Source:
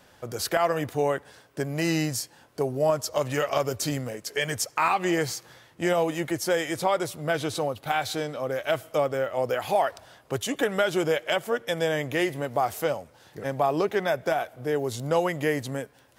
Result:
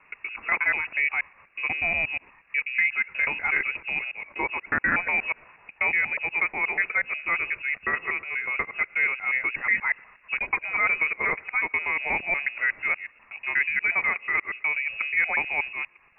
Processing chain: local time reversal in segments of 0.121 s; inverted band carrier 2700 Hz

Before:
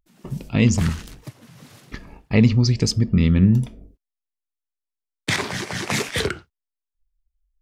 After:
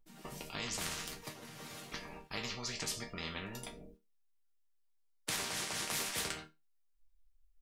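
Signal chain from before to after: resonator bank D#3 major, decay 0.22 s; spectral compressor 4:1; gain -1 dB

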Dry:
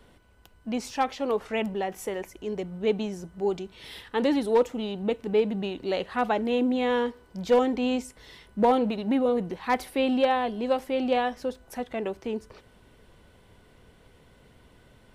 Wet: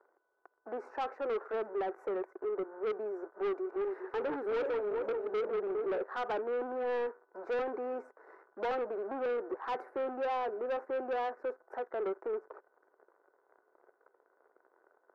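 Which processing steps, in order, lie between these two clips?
3.44–5.98 regenerating reverse delay 0.203 s, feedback 56%, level -6 dB; sample leveller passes 3; elliptic band-pass 370–1500 Hz, stop band 40 dB; dynamic EQ 780 Hz, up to -6 dB, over -32 dBFS, Q 0.93; soft clip -23 dBFS, distortion -11 dB; gain -6.5 dB

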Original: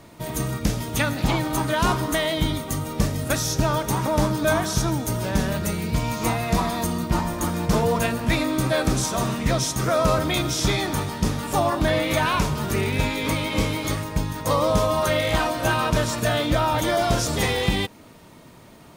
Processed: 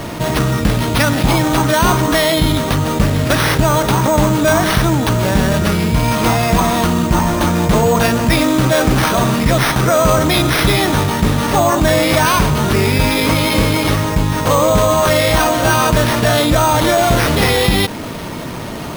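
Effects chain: careless resampling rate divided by 6×, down none, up hold; fast leveller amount 50%; gain +6.5 dB

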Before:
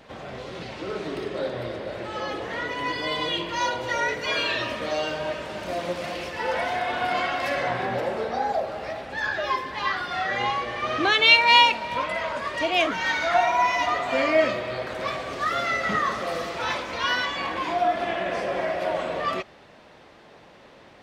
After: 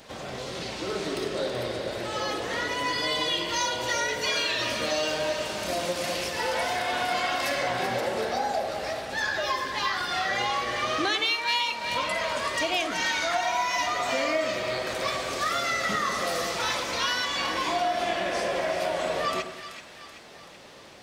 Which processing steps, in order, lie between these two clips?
tone controls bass -1 dB, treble +13 dB; compressor 6:1, threshold -24 dBFS, peak gain reduction 16.5 dB; on a send: split-band echo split 1300 Hz, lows 0.101 s, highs 0.381 s, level -9 dB

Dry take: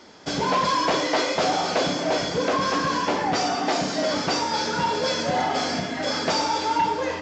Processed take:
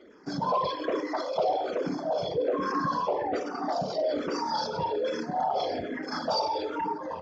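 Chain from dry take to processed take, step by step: formant sharpening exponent 2; endless phaser -1.2 Hz; gain -2.5 dB

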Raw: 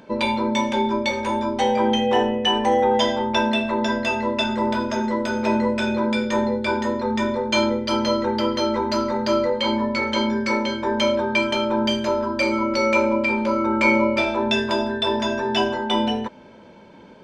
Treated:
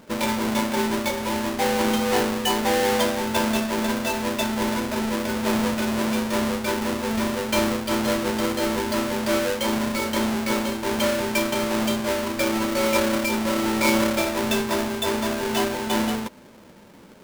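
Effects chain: half-waves squared off; gain -6.5 dB

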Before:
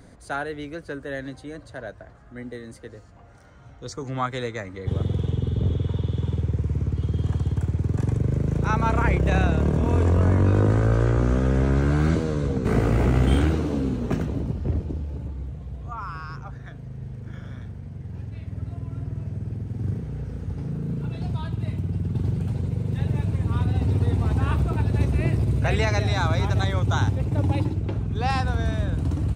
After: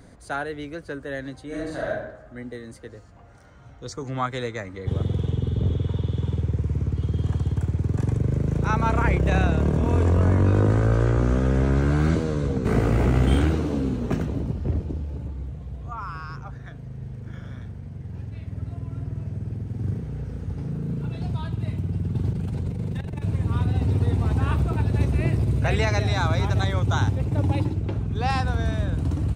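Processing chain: 1.47–1.88 reverb throw, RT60 0.84 s, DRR -7.5 dB; 22.33–23.22 negative-ratio compressor -27 dBFS, ratio -0.5

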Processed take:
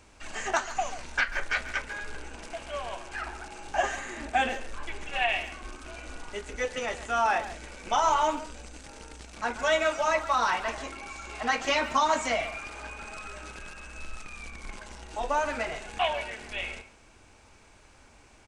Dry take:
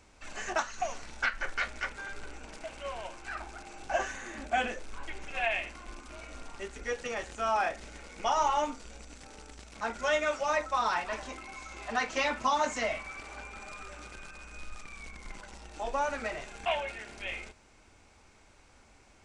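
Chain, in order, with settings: speed mistake 24 fps film run at 25 fps; speakerphone echo 0.14 s, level -12 dB; gain +3.5 dB

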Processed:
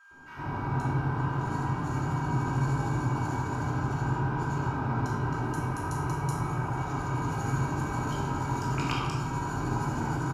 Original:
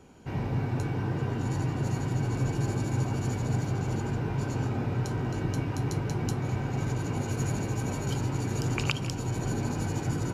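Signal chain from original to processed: 0.98–1.87 hard clip -24.5 dBFS, distortion -28 dB; 5.42–6.78 fifteen-band EQ 250 Hz -5 dB, 4000 Hz -4 dB, 10000 Hz +10 dB; bands offset in time highs, lows 0.11 s, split 1200 Hz; whine 1600 Hz -57 dBFS; band shelf 1100 Hz +13 dB 1.1 oct; shoebox room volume 760 m³, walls mixed, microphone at 2.8 m; gain -9 dB

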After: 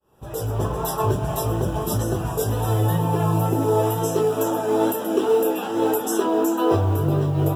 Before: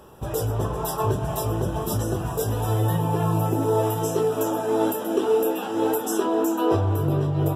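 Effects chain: opening faded in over 0.63 s; wow and flutter 22 cents; modulation noise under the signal 35 dB; gain +2 dB

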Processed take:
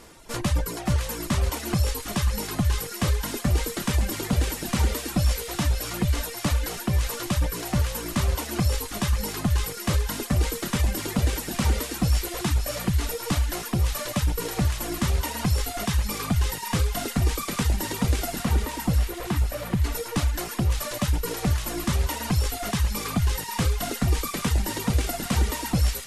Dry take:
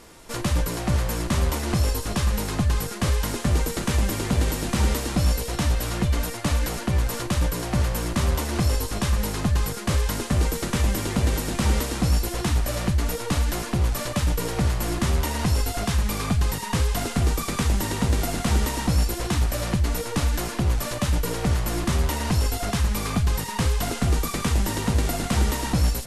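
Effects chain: reverb removal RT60 1.6 s; 18.42–19.78 bell 6700 Hz -12 dB 1.8 oct; on a send: thin delay 0.563 s, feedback 59%, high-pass 1900 Hz, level -4 dB

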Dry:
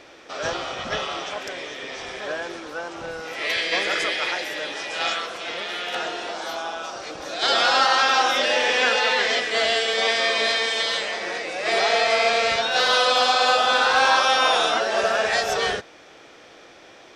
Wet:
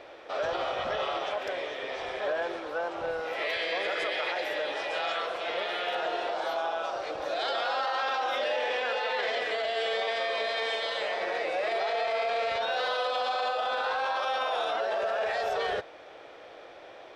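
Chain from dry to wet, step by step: EQ curve 100 Hz 0 dB, 220 Hz -5 dB, 590 Hz +9 dB, 1200 Hz +3 dB, 3900 Hz -2 dB, 6100 Hz -13 dB; limiter -17 dBFS, peak gain reduction 14 dB; high shelf 8800 Hz +11 dB; gain -5 dB

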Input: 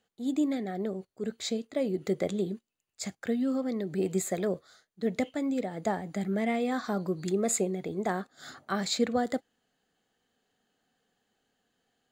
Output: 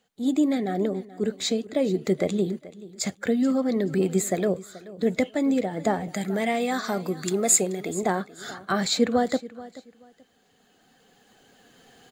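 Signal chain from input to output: bin magnitudes rounded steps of 15 dB; recorder AGC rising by 6.6 dB/s; 6.08–8.03 tilt +2 dB/oct; feedback echo 0.431 s, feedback 23%, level -18 dB; gain +6 dB

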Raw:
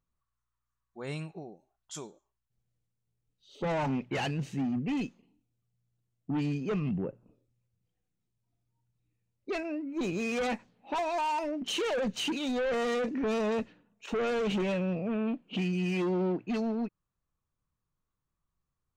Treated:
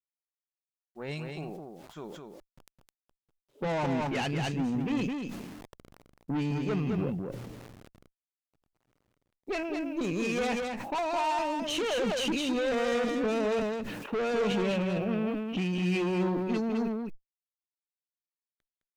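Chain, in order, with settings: low-pass opened by the level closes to 650 Hz, open at -30 dBFS; requantised 12-bit, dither none; added harmonics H 4 -19 dB, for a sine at -24.5 dBFS; on a send: echo 0.211 s -5 dB; on the sum: sustainer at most 30 dB/s

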